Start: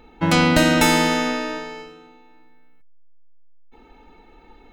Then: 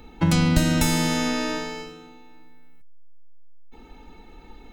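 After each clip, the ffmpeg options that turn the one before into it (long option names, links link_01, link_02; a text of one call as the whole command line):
ffmpeg -i in.wav -filter_complex "[0:a]bass=frequency=250:gain=13,treble=frequency=4000:gain=9,acrossover=split=150[link_01][link_02];[link_02]acompressor=threshold=-19dB:ratio=10[link_03];[link_01][link_03]amix=inputs=2:normalize=0,lowshelf=frequency=200:gain=-7.5" out.wav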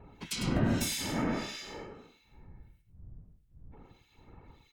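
ffmpeg -i in.wav -filter_complex "[0:a]afftfilt=real='hypot(re,im)*cos(2*PI*random(0))':imag='hypot(re,im)*sin(2*PI*random(1))':win_size=512:overlap=0.75,acrossover=split=2100[link_01][link_02];[link_01]aeval=exprs='val(0)*(1-1/2+1/2*cos(2*PI*1.6*n/s))':channel_layout=same[link_03];[link_02]aeval=exprs='val(0)*(1-1/2-1/2*cos(2*PI*1.6*n/s))':channel_layout=same[link_04];[link_03][link_04]amix=inputs=2:normalize=0,aecho=1:1:102:0.398" out.wav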